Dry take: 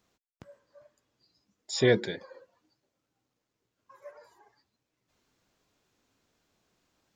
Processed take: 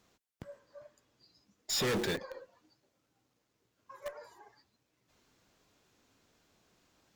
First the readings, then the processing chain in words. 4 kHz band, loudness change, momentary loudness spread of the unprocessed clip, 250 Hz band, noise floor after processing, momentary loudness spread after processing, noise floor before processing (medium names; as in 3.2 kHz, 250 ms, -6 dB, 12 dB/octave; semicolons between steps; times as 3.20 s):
0.0 dB, -7.0 dB, 15 LU, -6.0 dB, -80 dBFS, 22 LU, -84 dBFS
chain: in parallel at -9 dB: companded quantiser 2-bit; on the sum: valve stage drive 34 dB, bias 0.25; trim +4.5 dB